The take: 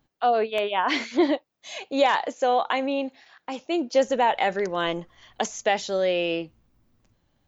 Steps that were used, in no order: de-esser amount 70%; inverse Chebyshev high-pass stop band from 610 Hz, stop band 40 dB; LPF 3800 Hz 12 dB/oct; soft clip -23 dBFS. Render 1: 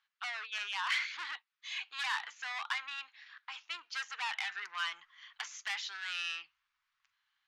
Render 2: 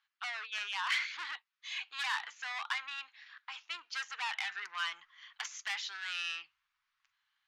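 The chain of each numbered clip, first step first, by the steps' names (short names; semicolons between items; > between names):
de-esser > LPF > soft clip > inverse Chebyshev high-pass; LPF > de-esser > soft clip > inverse Chebyshev high-pass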